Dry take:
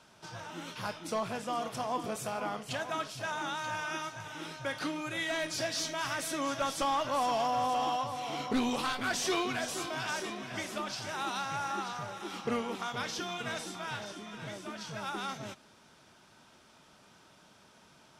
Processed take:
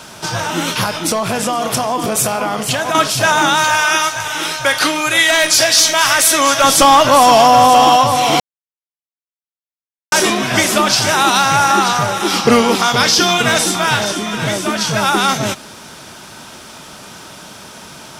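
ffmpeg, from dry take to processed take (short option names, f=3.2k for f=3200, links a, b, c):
-filter_complex "[0:a]asettb=1/sr,asplit=3[a][b][c];[a]atrim=end=0.834[d];[b]atrim=start=0.83:end=2.95,asetpts=PTS-STARTPTS,afade=t=in:d=0.004:c=qsin,afade=t=out:st=2.116:d=0.004:c=qsin,acompressor=threshold=-38dB:ratio=5:attack=3.2:release=140:knee=1:detection=peak[e];[c]atrim=start=2.946[f];[d][e]acrossfade=d=0.004:c1=hsin:c2=qsin[g];[g][f]acrossfade=d=0.004:c1=qsin:c2=hsin,asettb=1/sr,asplit=3[h][i][j];[h]atrim=end=3.644[k];[i]atrim=start=3.64:end=6.64,asetpts=PTS-STARTPTS,afade=t=in:d=0.004:c=qsin,afade=t=out:st=2.996:d=0.004:c=qsin,equalizer=f=170:t=o:w=2.7:g=-12[l];[j]atrim=start=6.636[m];[k][l]acrossfade=d=0.004:c1=hsin:c2=qsin[n];[n][m]acrossfade=d=0.004:c1=qsin:c2=hsin,asettb=1/sr,asplit=3[o][p][q];[o]atrim=end=12.274[r];[p]atrim=start=12.27:end=13.32,asetpts=PTS-STARTPTS,afade=t=in:d=0.004:c=qsin,afade=t=out:st=1.046:d=0.004:c=qsin,equalizer=f=4.9k:w=3.2:g=6.5[s];[q]atrim=start=13.316[t];[r][s]acrossfade=d=0.004:c1=hsin:c2=qsin[u];[u][t]acrossfade=d=0.004:c1=qsin:c2=hsin,asplit=3[v][w][x];[v]atrim=end=8.4,asetpts=PTS-STARTPTS,afade=t=out:st=8.396:d=0.004:c=hsin[y];[w]atrim=start=8.4:end=10.12,asetpts=PTS-STARTPTS,volume=0[z];[x]atrim=start=10.12,asetpts=PTS-STARTPTS,afade=t=in:d=0.004:c=hsin[aa];[y][z][aa]concat=n=3:v=0:a=1,highshelf=f=7.5k:g=10,alimiter=level_in=24.5dB:limit=-1dB:release=50:level=0:latency=1,volume=-1dB"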